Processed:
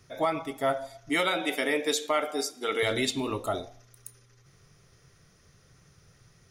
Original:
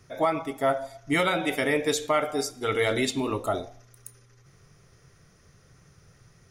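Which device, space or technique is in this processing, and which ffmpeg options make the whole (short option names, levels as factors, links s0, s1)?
presence and air boost: -filter_complex "[0:a]equalizer=f=3700:t=o:w=1.1:g=4,highshelf=f=9000:g=3.5,asettb=1/sr,asplit=3[s0][s1][s2];[s0]atrim=end=1.094[s3];[s1]atrim=start=1.09:end=2.83,asetpts=PTS-STARTPTS,afade=t=in:d=0.004:c=qsin,afade=t=out:st=1.736:d=0.004:c=qsin,highpass=f=210:w=0.5412,highpass=f=210:w=1.3066[s4];[s2]atrim=start=2.826[s5];[s3][s4]acrossfade=d=0.004:c1=hsin:c2=qsin[s6];[s6][s5]acrossfade=d=0.004:c1=qsin:c2=hsin,volume=0.708"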